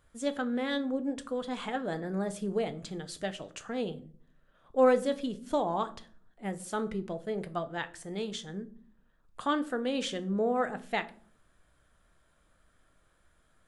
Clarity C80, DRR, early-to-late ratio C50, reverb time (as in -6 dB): 22.0 dB, 9.5 dB, 18.0 dB, 0.50 s